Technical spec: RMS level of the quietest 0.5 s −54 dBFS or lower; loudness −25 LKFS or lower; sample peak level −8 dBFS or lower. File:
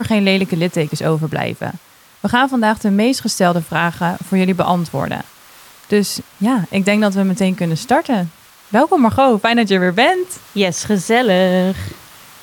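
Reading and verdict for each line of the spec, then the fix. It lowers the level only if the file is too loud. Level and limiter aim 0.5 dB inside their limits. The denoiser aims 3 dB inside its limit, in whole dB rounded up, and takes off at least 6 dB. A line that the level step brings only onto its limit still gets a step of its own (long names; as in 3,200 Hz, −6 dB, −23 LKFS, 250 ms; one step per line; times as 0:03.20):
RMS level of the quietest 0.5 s −43 dBFS: out of spec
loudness −16.0 LKFS: out of spec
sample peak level −2.5 dBFS: out of spec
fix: broadband denoise 6 dB, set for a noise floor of −43 dBFS
level −9.5 dB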